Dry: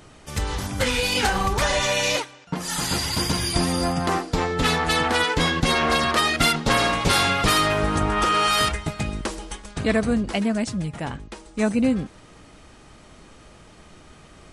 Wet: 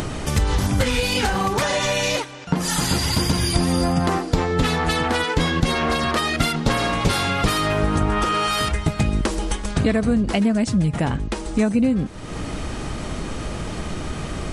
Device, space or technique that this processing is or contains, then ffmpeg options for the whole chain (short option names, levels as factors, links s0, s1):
upward and downward compression: -filter_complex "[0:a]asettb=1/sr,asplit=3[s0][s1][s2];[s0]atrim=end=1.354[s3];[s1]atrim=start=1.35:end=1.83,asetpts=PTS-STARTPTS,afade=t=in:d=0.004:c=qsin,afade=t=out:st=0.476:d=0.004:c=qsin,highpass=140[s4];[s2]atrim=start=1.826[s5];[s3][s4]acrossfade=d=0.004:c1=hsin:c2=qsin[s6];[s6][s5]acrossfade=d=0.004:c1=qsin:c2=hsin,acompressor=mode=upward:threshold=0.0501:ratio=2.5,acompressor=threshold=0.0562:ratio=6,lowshelf=f=420:g=6,volume=1.88"